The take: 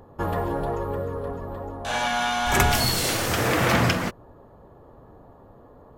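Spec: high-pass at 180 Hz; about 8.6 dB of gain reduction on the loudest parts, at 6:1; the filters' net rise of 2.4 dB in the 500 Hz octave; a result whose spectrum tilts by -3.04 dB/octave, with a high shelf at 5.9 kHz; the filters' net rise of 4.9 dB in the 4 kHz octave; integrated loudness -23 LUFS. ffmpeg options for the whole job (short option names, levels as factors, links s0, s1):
-af "highpass=180,equalizer=f=500:t=o:g=3,equalizer=f=4000:t=o:g=8.5,highshelf=f=5900:g=-7,acompressor=threshold=0.0562:ratio=6,volume=1.88"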